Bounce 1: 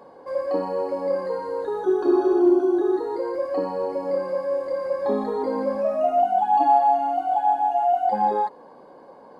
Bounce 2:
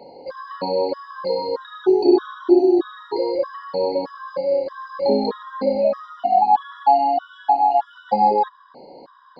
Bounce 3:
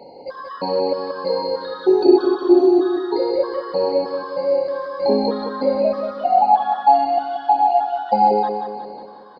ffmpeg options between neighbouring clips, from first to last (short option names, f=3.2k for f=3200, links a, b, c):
-af "lowpass=f=4.3k:t=q:w=12,aemphasis=mode=reproduction:type=cd,afftfilt=real='re*gt(sin(2*PI*1.6*pts/sr)*(1-2*mod(floor(b*sr/1024/980),2)),0)':imag='im*gt(sin(2*PI*1.6*pts/sr)*(1-2*mod(floor(b*sr/1024/980),2)),0)':win_size=1024:overlap=0.75,volume=5dB"
-af "aecho=1:1:181|362|543|724|905|1086:0.447|0.237|0.125|0.0665|0.0352|0.0187,volume=1dB"